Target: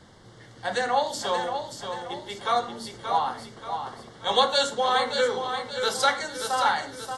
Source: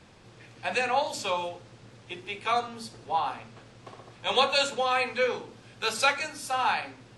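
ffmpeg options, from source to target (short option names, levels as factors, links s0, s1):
-filter_complex "[0:a]asuperstop=centerf=2500:order=4:qfactor=3.4,asplit=2[s0][s1];[s1]aecho=0:1:580|1160|1740|2320|2900:0.447|0.197|0.0865|0.0381|0.0167[s2];[s0][s2]amix=inputs=2:normalize=0,volume=1.33"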